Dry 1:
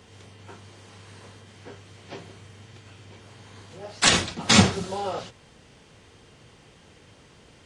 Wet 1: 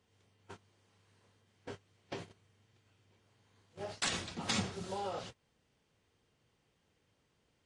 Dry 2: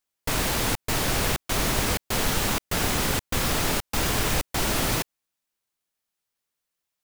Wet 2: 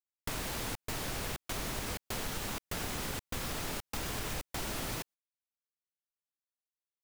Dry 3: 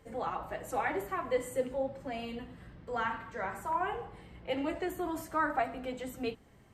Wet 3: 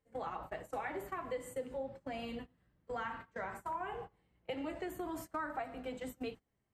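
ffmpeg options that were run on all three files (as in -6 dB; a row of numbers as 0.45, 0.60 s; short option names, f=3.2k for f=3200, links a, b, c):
-af "agate=range=-23dB:threshold=-41dB:ratio=16:detection=peak,acompressor=threshold=-39dB:ratio=3"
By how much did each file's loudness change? -18.0, -12.5, -7.0 LU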